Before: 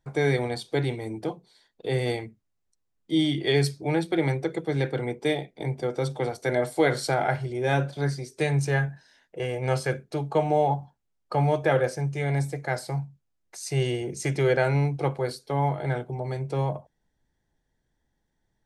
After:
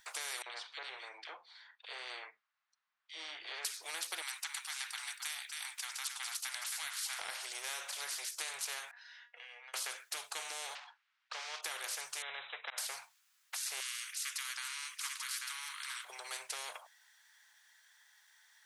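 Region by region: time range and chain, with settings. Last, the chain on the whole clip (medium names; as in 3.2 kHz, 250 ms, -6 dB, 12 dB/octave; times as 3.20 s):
0.42–3.65 s: tape spacing loss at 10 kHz 42 dB + three bands offset in time highs, mids, lows 40/80 ms, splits 220/2200 Hz
4.22–7.19 s: high-pass 1.4 kHz 24 dB/octave + delay 269 ms -13.5 dB
8.91–9.74 s: compression 16:1, threshold -39 dBFS + distance through air 250 m + feedback comb 240 Hz, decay 0.18 s, mix 80%
10.75–11.63 s: block-companded coder 5-bit + band-pass 690–3100 Hz + distance through air 77 m
12.22–12.78 s: brick-wall FIR low-pass 4 kHz + slow attack 214 ms
13.80–16.05 s: steep high-pass 1.1 kHz 96 dB/octave + delay 840 ms -11.5 dB
whole clip: inverse Chebyshev high-pass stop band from 280 Hz, stop band 70 dB; compression 3:1, threshold -35 dBFS; spectrum-flattening compressor 4:1; trim +2.5 dB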